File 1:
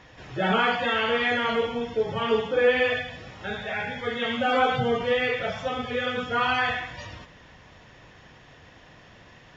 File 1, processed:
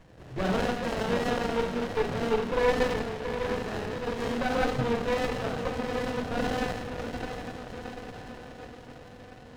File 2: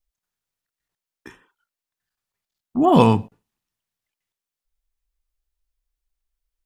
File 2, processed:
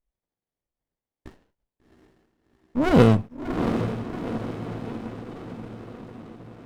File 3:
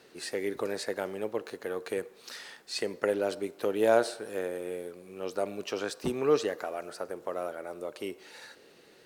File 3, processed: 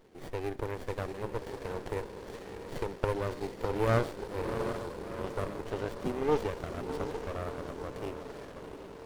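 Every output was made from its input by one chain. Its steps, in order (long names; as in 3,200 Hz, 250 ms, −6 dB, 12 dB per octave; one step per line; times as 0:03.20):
feedback delay with all-pass diffusion 734 ms, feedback 59%, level −7 dB
windowed peak hold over 33 samples
level −1.5 dB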